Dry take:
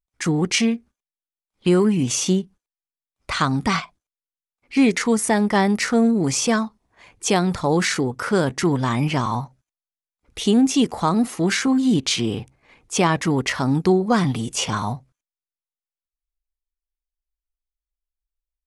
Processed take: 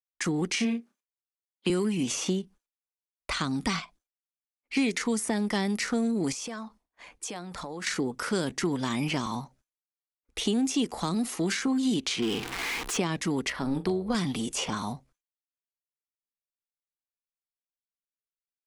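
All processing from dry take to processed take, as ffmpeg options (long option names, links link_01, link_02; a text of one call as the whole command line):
ffmpeg -i in.wav -filter_complex "[0:a]asettb=1/sr,asplit=3[link_01][link_02][link_03];[link_01]atrim=end=0.554[link_04];[link_02]atrim=start=0.55:end=1.7,asetpts=PTS-STARTPTS,afade=type=in:duration=0.004:curve=qsin,afade=type=out:start_time=1.146:duration=0.004:curve=qsin,highpass=frequency=150:width=0.5412,highpass=frequency=150:width=1.3066,asplit=2[link_05][link_06];[link_06]adelay=34,volume=-6dB[link_07];[link_05][link_07]amix=inputs=2:normalize=0,atrim=end_sample=50715[link_08];[link_03]atrim=start=1.696[link_09];[link_04][link_08]acrossfade=duration=0.004:curve1=hsin:curve2=qsin[link_10];[link_10][link_09]acrossfade=duration=0.004:curve1=qsin:curve2=hsin,asettb=1/sr,asplit=3[link_11][link_12][link_13];[link_11]atrim=end=6.324[link_14];[link_12]atrim=start=6.32:end=7.87,asetpts=PTS-STARTPTS,afade=type=in:duration=0.004:curve=qsin,afade=type=out:start_time=1.546:duration=0.004:curve=qsin,acompressor=threshold=-31dB:ratio=10:attack=3.2:release=140:knee=1:detection=peak,bandreject=frequency=390:width=7.7[link_15];[link_13]atrim=start=7.866[link_16];[link_14][link_15]acrossfade=duration=0.004:curve1=hsin:curve2=qsin[link_17];[link_17][link_16]acrossfade=duration=0.004:curve1=qsin:curve2=hsin,asettb=1/sr,asplit=3[link_18][link_19][link_20];[link_18]atrim=end=12.224[link_21];[link_19]atrim=start=12.22:end=12.97,asetpts=PTS-STARTPTS,afade=type=in:duration=0.004:curve=qsin,afade=type=out:start_time=0.746:duration=0.004:curve=qsin,aeval=exprs='val(0)+0.5*0.0376*sgn(val(0))':channel_layout=same,asplit=2[link_22][link_23];[link_23]highpass=frequency=720:poles=1,volume=14dB,asoftclip=type=tanh:threshold=-10.5dB[link_24];[link_22][link_24]amix=inputs=2:normalize=0,lowpass=frequency=3900:poles=1,volume=-6dB,equalizer=frequency=590:width_type=o:width=0.28:gain=-13.5[link_25];[link_20]atrim=start=12.966[link_26];[link_21][link_25]acrossfade=duration=0.004:curve1=hsin:curve2=qsin[link_27];[link_27][link_26]acrossfade=duration=0.004:curve1=qsin:curve2=hsin,asettb=1/sr,asplit=3[link_28][link_29][link_30];[link_28]atrim=end=13.504[link_31];[link_29]atrim=start=13.5:end=14.15,asetpts=PTS-STARTPTS,afade=type=in:duration=0.004:curve=qsin,afade=type=out:start_time=0.646:duration=0.004:curve=qsin,equalizer=frequency=6700:width=2:gain=-14,tremolo=f=270:d=0.4,asplit=2[link_32][link_33];[link_33]adelay=41,volume=-13.5dB[link_34];[link_32][link_34]amix=inputs=2:normalize=0,atrim=end_sample=28665[link_35];[link_30]atrim=start=14.146[link_36];[link_31][link_35]acrossfade=duration=0.004:curve1=hsin:curve2=qsin[link_37];[link_37][link_36]acrossfade=duration=0.004:curve1=qsin:curve2=hsin,agate=range=-33dB:threshold=-49dB:ratio=3:detection=peak,equalizer=frequency=110:width_type=o:width=1.1:gain=-14.5,acrossover=split=320|2400[link_38][link_39][link_40];[link_38]acompressor=threshold=-27dB:ratio=4[link_41];[link_39]acompressor=threshold=-35dB:ratio=4[link_42];[link_40]acompressor=threshold=-33dB:ratio=4[link_43];[link_41][link_42][link_43]amix=inputs=3:normalize=0" out.wav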